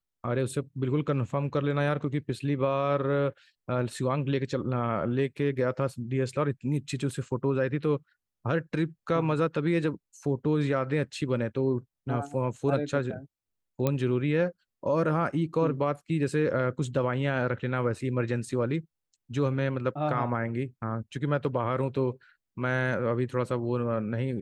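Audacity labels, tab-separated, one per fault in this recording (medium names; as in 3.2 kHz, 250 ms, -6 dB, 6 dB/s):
13.870000	13.870000	pop -13 dBFS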